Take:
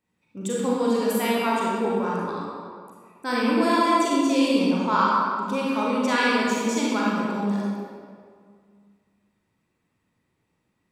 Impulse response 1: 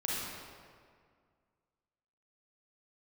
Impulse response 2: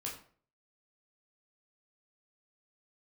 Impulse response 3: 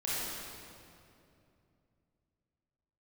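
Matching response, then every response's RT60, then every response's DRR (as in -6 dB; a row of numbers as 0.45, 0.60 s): 1; 2.0, 0.50, 2.7 s; -6.0, -3.0, -9.0 dB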